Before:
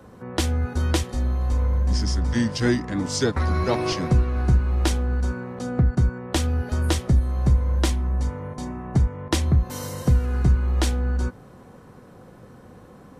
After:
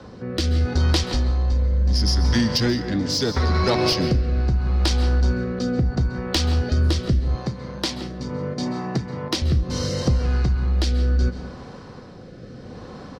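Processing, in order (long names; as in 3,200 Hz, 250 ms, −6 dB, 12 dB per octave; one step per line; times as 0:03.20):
low-pass with resonance 4,800 Hz, resonance Q 3.4
far-end echo of a speakerphone 170 ms, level −16 dB
downward compressor, threshold −22 dBFS, peak gain reduction 8.5 dB
soft clipping −19.5 dBFS, distortion −19 dB
dense smooth reverb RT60 0.71 s, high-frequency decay 0.55×, pre-delay 120 ms, DRR 11.5 dB
rotating-speaker cabinet horn 0.75 Hz
0:07.35–0:09.42: high-pass filter 120 Hz 24 dB per octave
level +8.5 dB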